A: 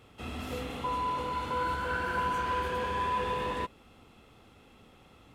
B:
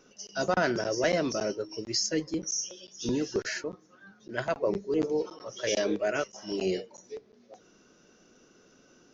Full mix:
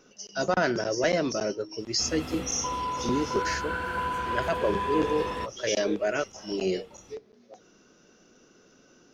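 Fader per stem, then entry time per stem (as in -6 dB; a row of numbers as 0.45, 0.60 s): +0.5, +1.5 dB; 1.80, 0.00 s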